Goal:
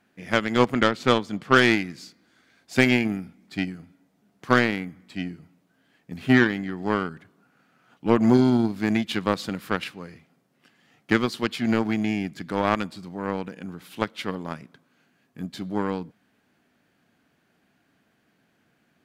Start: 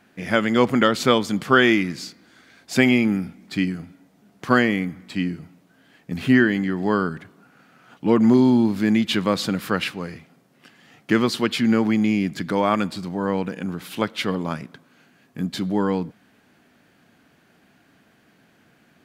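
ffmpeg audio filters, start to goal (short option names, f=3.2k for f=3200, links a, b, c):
-filter_complex "[0:a]asettb=1/sr,asplit=3[a][b][c];[a]atrim=end=0.744[d];[b]atrim=start=0.74:end=1.56,asetpts=PTS-STARTPTS,afade=t=in:d=0.004:c=qsin,afade=t=out:st=0.816:d=0.004:c=qsin,lowpass=f=3.9k:p=1[e];[c]atrim=start=1.556[f];[d][e]acrossfade=d=0.004:c1=hsin:c2=qsin[g];[g][f]acrossfade=d=0.004:c1=qsin:c2=hsin,aeval=exprs='0.841*(cos(1*acos(clip(val(0)/0.841,-1,1)))-cos(1*PI/2))+0.0422*(cos(3*acos(clip(val(0)/0.841,-1,1)))-cos(3*PI/2))+0.0596*(cos(7*acos(clip(val(0)/0.841,-1,1)))-cos(7*PI/2))':c=same"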